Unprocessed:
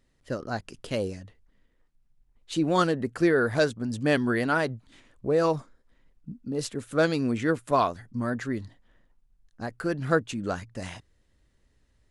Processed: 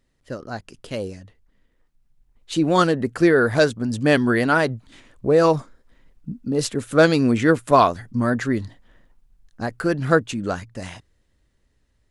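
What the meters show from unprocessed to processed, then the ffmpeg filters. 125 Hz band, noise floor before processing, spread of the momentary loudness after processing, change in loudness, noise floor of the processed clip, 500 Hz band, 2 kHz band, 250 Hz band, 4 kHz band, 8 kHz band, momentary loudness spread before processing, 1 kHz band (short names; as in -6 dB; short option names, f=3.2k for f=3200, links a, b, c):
+7.0 dB, -68 dBFS, 19 LU, +7.5 dB, -66 dBFS, +7.0 dB, +7.0 dB, +7.0 dB, +6.5 dB, +7.0 dB, 15 LU, +7.5 dB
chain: -af "dynaudnorm=f=230:g=17:m=11.5dB"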